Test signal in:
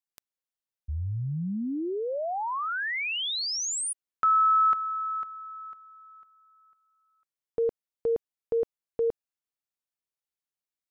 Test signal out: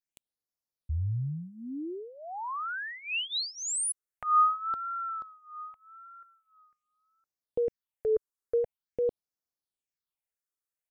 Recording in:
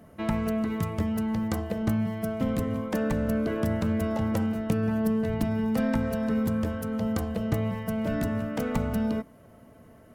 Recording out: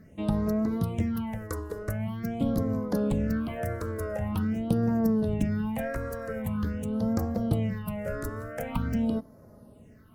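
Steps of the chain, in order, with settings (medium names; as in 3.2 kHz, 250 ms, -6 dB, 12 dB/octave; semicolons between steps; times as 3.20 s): phase shifter stages 6, 0.45 Hz, lowest notch 190–3000 Hz; wow and flutter 0.67 Hz 89 cents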